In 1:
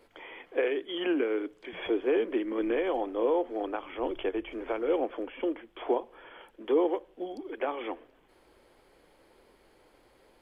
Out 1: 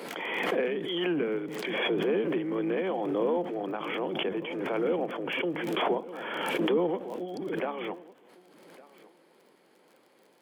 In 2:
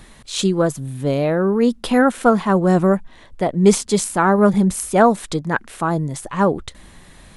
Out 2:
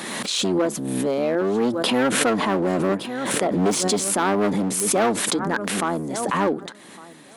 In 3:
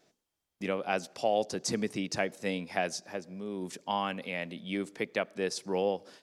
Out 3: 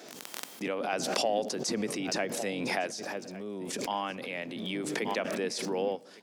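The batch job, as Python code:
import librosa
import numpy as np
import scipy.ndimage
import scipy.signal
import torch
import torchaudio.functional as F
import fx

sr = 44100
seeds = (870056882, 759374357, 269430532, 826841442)

p1 = fx.octave_divider(x, sr, octaves=1, level_db=0.0)
p2 = fx.dmg_crackle(p1, sr, seeds[0], per_s=25.0, level_db=-48.0)
p3 = p2 + fx.echo_feedback(p2, sr, ms=1156, feedback_pct=16, wet_db=-22.0, dry=0)
p4 = np.clip(10.0 ** (12.5 / 20.0) * p3, -1.0, 1.0) / 10.0 ** (12.5 / 20.0)
p5 = scipy.signal.sosfilt(scipy.signal.butter(4, 210.0, 'highpass', fs=sr, output='sos'), p4)
p6 = 10.0 ** (-22.5 / 20.0) * np.tanh(p5 / 10.0 ** (-22.5 / 20.0))
p7 = p5 + (p6 * 10.0 ** (-11.0 / 20.0))
p8 = fx.dynamic_eq(p7, sr, hz=9300.0, q=0.71, threshold_db=-40.0, ratio=4.0, max_db=-4)
p9 = fx.pre_swell(p8, sr, db_per_s=27.0)
y = p9 * 10.0 ** (-3.5 / 20.0)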